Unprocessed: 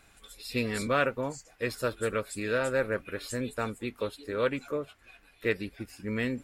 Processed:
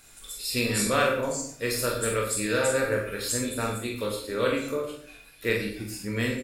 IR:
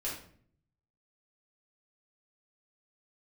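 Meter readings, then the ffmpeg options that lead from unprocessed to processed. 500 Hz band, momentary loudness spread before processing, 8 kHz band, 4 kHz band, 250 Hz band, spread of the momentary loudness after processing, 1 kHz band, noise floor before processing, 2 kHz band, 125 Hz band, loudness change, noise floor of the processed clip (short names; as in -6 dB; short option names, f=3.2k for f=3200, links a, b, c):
+3.5 dB, 9 LU, +14.0 dB, +9.0 dB, +3.5 dB, 10 LU, +3.5 dB, -61 dBFS, +3.5 dB, +4.5 dB, +4.5 dB, -51 dBFS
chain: -filter_complex "[0:a]bass=f=250:g=0,treble=f=4k:g=12,aecho=1:1:25|44:0.501|0.531,asplit=2[a][b];[1:a]atrim=start_sample=2205,adelay=39[c];[b][c]afir=irnorm=-1:irlink=0,volume=-6.5dB[d];[a][d]amix=inputs=2:normalize=0"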